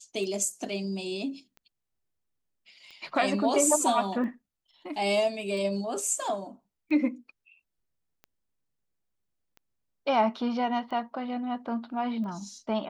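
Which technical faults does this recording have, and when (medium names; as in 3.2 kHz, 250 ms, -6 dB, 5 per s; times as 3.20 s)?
tick 45 rpm -33 dBFS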